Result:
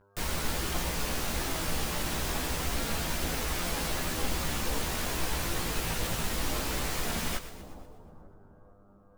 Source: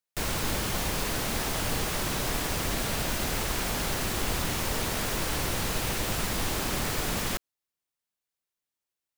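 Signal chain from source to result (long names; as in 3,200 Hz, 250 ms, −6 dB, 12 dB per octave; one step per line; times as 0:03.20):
hum with harmonics 100 Hz, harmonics 16, −59 dBFS −4 dB per octave
echo with a time of its own for lows and highs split 960 Hz, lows 450 ms, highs 121 ms, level −12.5 dB
multi-voice chorus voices 6, 0.22 Hz, delay 15 ms, depth 3.4 ms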